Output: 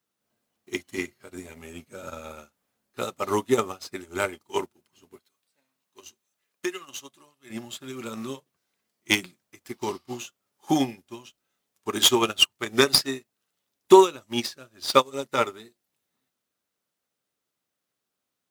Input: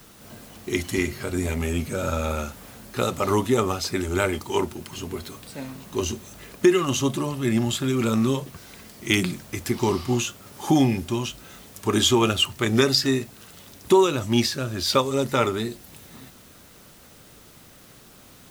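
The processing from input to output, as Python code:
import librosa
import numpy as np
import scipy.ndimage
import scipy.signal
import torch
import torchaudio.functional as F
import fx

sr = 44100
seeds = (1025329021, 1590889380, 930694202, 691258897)

y = fx.tracing_dist(x, sr, depth_ms=0.052)
y = fx.highpass(y, sr, hz=fx.steps((0.0, 270.0), (5.19, 1200.0), (7.5, 390.0)), slope=6)
y = fx.upward_expand(y, sr, threshold_db=-42.0, expansion=2.5)
y = F.gain(torch.from_numpy(y), 8.0).numpy()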